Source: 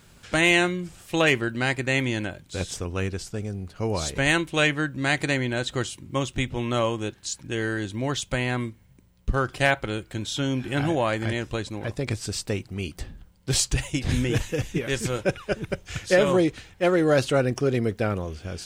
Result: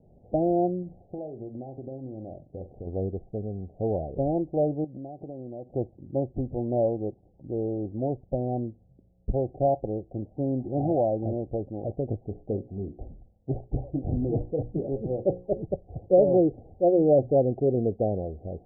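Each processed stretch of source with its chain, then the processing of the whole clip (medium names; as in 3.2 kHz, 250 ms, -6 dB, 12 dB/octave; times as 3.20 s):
0.82–2.87 s: compression 10:1, threshold -31 dBFS + flutter echo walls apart 7.8 m, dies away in 0.25 s
4.84–5.73 s: band-pass 110–2100 Hz + compression 5:1, threshold -34 dBFS
12.29–15.63 s: hum notches 60/120/180/240/300/360/420/480/540 Hz + loudspeaker Doppler distortion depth 0.43 ms
16.42–17.34 s: companding laws mixed up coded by mu + peaking EQ 1.2 kHz -9.5 dB 0.53 oct + hum notches 60/120/180/240 Hz
whole clip: steep low-pass 770 Hz 96 dB/octave; bass shelf 480 Hz -9 dB; trim +5.5 dB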